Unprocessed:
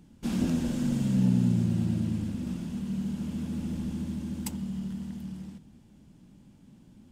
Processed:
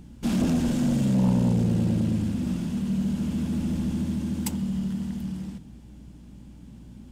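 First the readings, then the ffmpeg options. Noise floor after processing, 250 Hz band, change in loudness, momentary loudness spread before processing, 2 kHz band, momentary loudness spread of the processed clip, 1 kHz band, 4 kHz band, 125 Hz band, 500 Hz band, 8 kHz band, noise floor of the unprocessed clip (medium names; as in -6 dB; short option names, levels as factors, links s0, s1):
-46 dBFS, +4.5 dB, +4.0 dB, 12 LU, +5.0 dB, 9 LU, +8.0 dB, +5.0 dB, +3.5 dB, +7.5 dB, +5.0 dB, -56 dBFS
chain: -af "acontrast=79,aeval=exprs='0.376*(cos(1*acos(clip(val(0)/0.376,-1,1)))-cos(1*PI/2))+0.0531*(cos(5*acos(clip(val(0)/0.376,-1,1)))-cos(5*PI/2))':c=same,aeval=exprs='val(0)+0.00794*(sin(2*PI*60*n/s)+sin(2*PI*2*60*n/s)/2+sin(2*PI*3*60*n/s)/3+sin(2*PI*4*60*n/s)/4+sin(2*PI*5*60*n/s)/5)':c=same,volume=0.562"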